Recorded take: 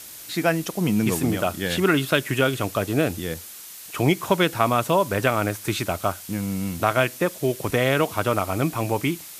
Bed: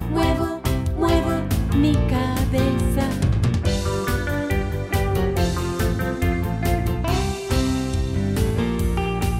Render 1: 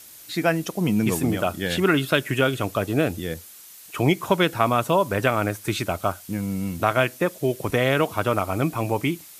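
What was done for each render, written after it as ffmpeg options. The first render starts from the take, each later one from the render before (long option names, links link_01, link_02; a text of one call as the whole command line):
ffmpeg -i in.wav -af "afftdn=noise_reduction=6:noise_floor=-40" out.wav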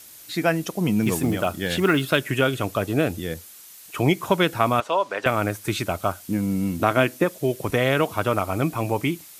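ffmpeg -i in.wav -filter_complex "[0:a]asettb=1/sr,asplit=3[link_01][link_02][link_03];[link_01]atrim=end=1.024[link_04];[link_02]atrim=start=1.02:end=2.17,asetpts=PTS-STARTPTS,afade=type=in:duration=0.004:curve=qsin,afade=type=out:start_time=1.146:duration=0.004:curve=qsin,acrusher=bits=8:mode=log:mix=0:aa=0.000001[link_05];[link_03]atrim=start=2.166[link_06];[link_04][link_05]acrossfade=duration=0.004:curve1=hsin:curve2=qsin[link_07];[link_07][link_06]acrossfade=duration=0.004:curve1=qsin:curve2=hsin,asettb=1/sr,asplit=3[link_08][link_09][link_10];[link_08]atrim=end=4.804[link_11];[link_09]atrim=start=4.8:end=5.26,asetpts=PTS-STARTPTS,afade=type=in:duration=0.004:curve=qsin,afade=type=out:start_time=0.456:duration=0.004:curve=qsin,highpass=540,lowpass=5000[link_12];[link_10]atrim=start=5.256[link_13];[link_11][link_12]acrossfade=duration=0.004:curve1=hsin:curve2=qsin[link_14];[link_14][link_13]acrossfade=duration=0.004:curve1=qsin:curve2=hsin,asettb=1/sr,asplit=3[link_15][link_16][link_17];[link_15]atrim=end=6.204[link_18];[link_16]atrim=start=6.2:end=7.24,asetpts=PTS-STARTPTS,afade=type=in:duration=0.004:curve=qsin,afade=type=out:start_time=1.036:duration=0.004:curve=qsin,equalizer=frequency=280:width=1.5:gain=7[link_19];[link_17]atrim=start=7.236[link_20];[link_18][link_19]acrossfade=duration=0.004:curve1=hsin:curve2=qsin[link_21];[link_21][link_20]acrossfade=duration=0.004:curve1=qsin:curve2=hsin" out.wav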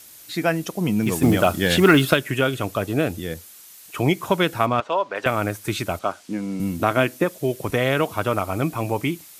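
ffmpeg -i in.wav -filter_complex "[0:a]asettb=1/sr,asplit=3[link_01][link_02][link_03];[link_01]atrim=end=1.224[link_04];[link_02]atrim=start=1.22:end=2.14,asetpts=PTS-STARTPTS,afade=type=in:duration=0.004:curve=qsin,afade=type=out:start_time=0.916:duration=0.004:curve=qsin,acontrast=63[link_05];[link_03]atrim=start=2.136[link_06];[link_04][link_05]acrossfade=duration=0.004:curve1=hsin:curve2=qsin[link_07];[link_07][link_06]acrossfade=duration=0.004:curve1=qsin:curve2=hsin,asplit=3[link_08][link_09][link_10];[link_08]afade=type=out:start_time=4.65:duration=0.02[link_11];[link_09]adynamicsmooth=sensitivity=1:basefreq=4500,afade=type=in:start_time=4.65:duration=0.02,afade=type=out:start_time=5.14:duration=0.02[link_12];[link_10]afade=type=in:start_time=5.14:duration=0.02[link_13];[link_11][link_12][link_13]amix=inputs=3:normalize=0,asettb=1/sr,asplit=3[link_14][link_15][link_16];[link_14]atrim=end=5.994[link_17];[link_15]atrim=start=5.99:end=6.6,asetpts=PTS-STARTPTS,afade=type=in:duration=0.004:curve=qsin,afade=type=out:start_time=0.606:duration=0.004:curve=qsin,highpass=230,lowpass=6700[link_18];[link_16]atrim=start=6.596[link_19];[link_17][link_18]acrossfade=duration=0.004:curve1=hsin:curve2=qsin[link_20];[link_20][link_19]acrossfade=duration=0.004:curve1=qsin:curve2=hsin" out.wav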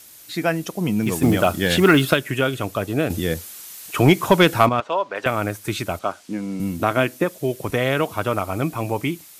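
ffmpeg -i in.wav -filter_complex "[0:a]asettb=1/sr,asplit=3[link_01][link_02][link_03];[link_01]atrim=end=3.104[link_04];[link_02]atrim=start=3.1:end=4.69,asetpts=PTS-STARTPTS,afade=type=in:duration=0.004:curve=qsin,afade=type=out:start_time=1.586:duration=0.004:curve=qsin,acontrast=77[link_05];[link_03]atrim=start=4.686[link_06];[link_04][link_05]acrossfade=duration=0.004:curve1=hsin:curve2=qsin[link_07];[link_07][link_06]acrossfade=duration=0.004:curve1=qsin:curve2=hsin" out.wav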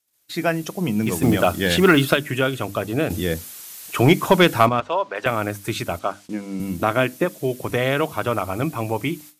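ffmpeg -i in.wav -af "agate=range=-30dB:threshold=-41dB:ratio=16:detection=peak,bandreject=frequency=50:width_type=h:width=6,bandreject=frequency=100:width_type=h:width=6,bandreject=frequency=150:width_type=h:width=6,bandreject=frequency=200:width_type=h:width=6,bandreject=frequency=250:width_type=h:width=6,bandreject=frequency=300:width_type=h:width=6" out.wav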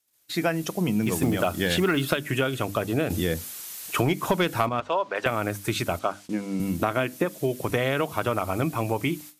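ffmpeg -i in.wav -af "acompressor=threshold=-20dB:ratio=6" out.wav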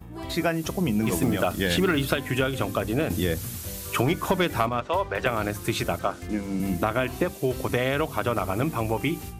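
ffmpeg -i in.wav -i bed.wav -filter_complex "[1:a]volume=-17dB[link_01];[0:a][link_01]amix=inputs=2:normalize=0" out.wav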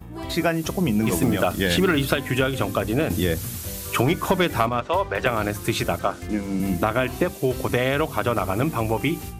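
ffmpeg -i in.wav -af "volume=3dB" out.wav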